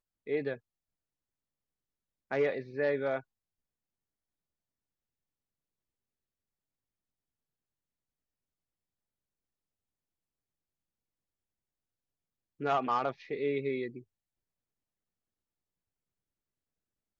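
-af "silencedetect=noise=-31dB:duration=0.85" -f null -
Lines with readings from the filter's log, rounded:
silence_start: 0.54
silence_end: 2.32 | silence_duration: 1.78
silence_start: 3.18
silence_end: 12.62 | silence_duration: 9.44
silence_start: 13.87
silence_end: 17.20 | silence_duration: 3.32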